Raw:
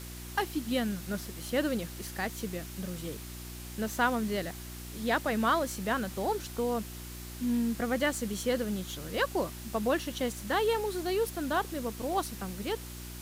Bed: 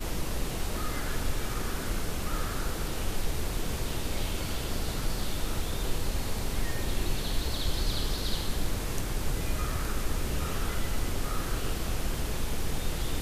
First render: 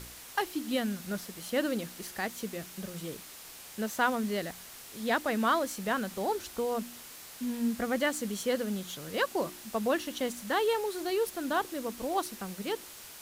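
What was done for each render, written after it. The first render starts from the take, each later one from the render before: de-hum 60 Hz, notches 6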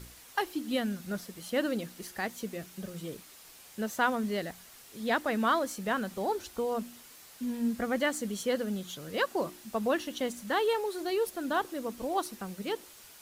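denoiser 6 dB, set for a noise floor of -48 dBFS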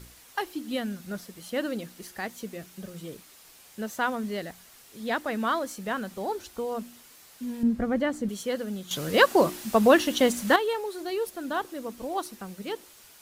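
7.63–8.29 tilt -3 dB/oct; 8.91–10.56 gain +11 dB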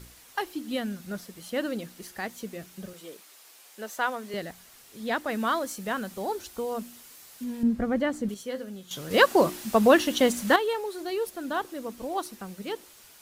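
2.93–4.34 HPF 390 Hz; 5.29–7.44 high shelf 5400 Hz +4.5 dB; 8.34–9.11 resonator 130 Hz, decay 0.22 s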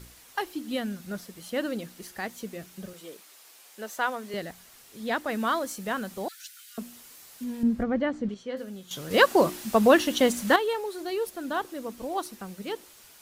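6.28–6.78 steep high-pass 1400 Hz 96 dB/oct; 7.83–8.57 air absorption 150 m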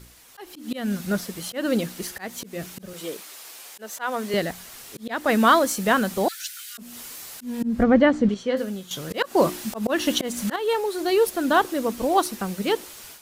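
AGC gain up to 11 dB; auto swell 0.228 s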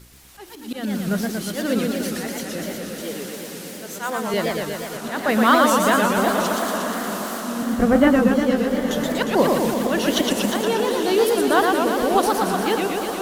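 diffused feedback echo 0.946 s, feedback 45%, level -9.5 dB; warbling echo 0.119 s, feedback 74%, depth 206 cents, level -3 dB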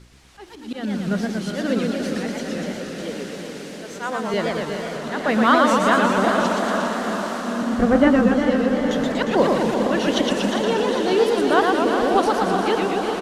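air absorption 76 m; feedback echo 0.403 s, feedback 60%, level -9 dB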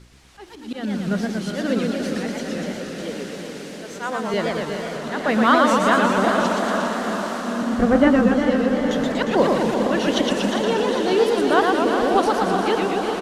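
nothing audible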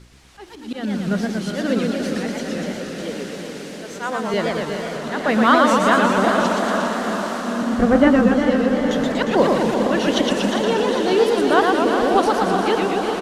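gain +1.5 dB

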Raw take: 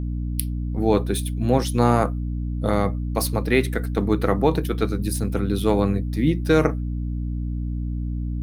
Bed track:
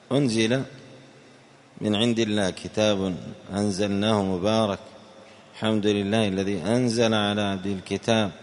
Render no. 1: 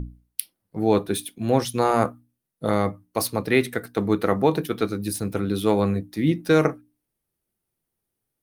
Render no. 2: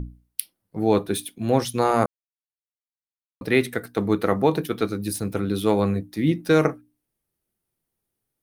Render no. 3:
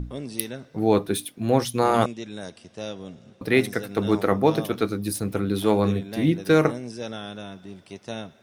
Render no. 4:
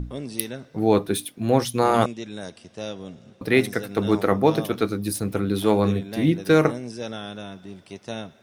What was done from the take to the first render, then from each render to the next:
notches 60/120/180/240/300 Hz
2.06–3.41 mute
add bed track -12.5 dB
gain +1 dB

